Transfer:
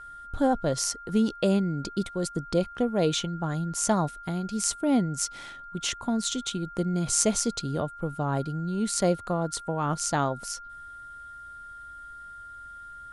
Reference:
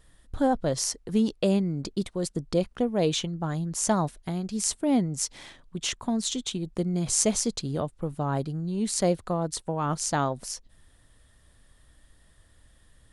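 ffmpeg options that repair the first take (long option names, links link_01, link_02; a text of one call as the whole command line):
ffmpeg -i in.wav -af "bandreject=frequency=1400:width=30" out.wav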